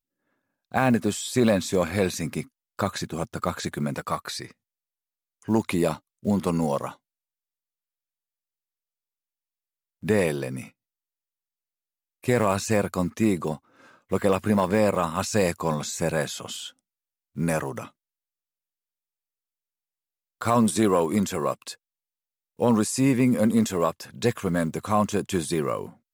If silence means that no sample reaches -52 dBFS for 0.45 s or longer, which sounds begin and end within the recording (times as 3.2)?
0.72–4.52
5.42–6.96
10.02–10.71
12.23–16.79
17.36–17.9
20.41–21.75